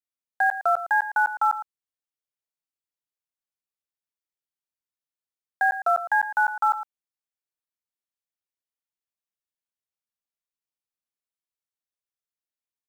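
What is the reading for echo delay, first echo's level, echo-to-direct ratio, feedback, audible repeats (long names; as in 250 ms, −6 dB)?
110 ms, −12.0 dB, −12.0 dB, repeats not evenly spaced, 1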